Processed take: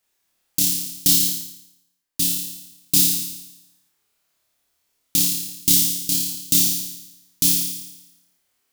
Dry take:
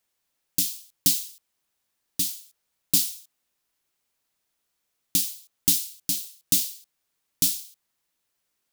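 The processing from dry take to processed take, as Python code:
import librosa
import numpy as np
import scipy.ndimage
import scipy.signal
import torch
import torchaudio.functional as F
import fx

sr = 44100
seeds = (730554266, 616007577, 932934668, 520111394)

p1 = x + fx.room_flutter(x, sr, wall_m=4.8, rt60_s=0.94, dry=0)
p2 = fx.band_widen(p1, sr, depth_pct=40, at=(1.2, 2.22))
y = F.gain(torch.from_numpy(p2), 2.0).numpy()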